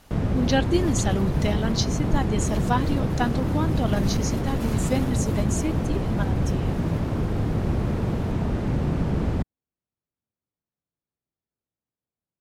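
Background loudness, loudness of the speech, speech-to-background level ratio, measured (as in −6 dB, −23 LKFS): −25.5 LKFS, −28.5 LKFS, −3.0 dB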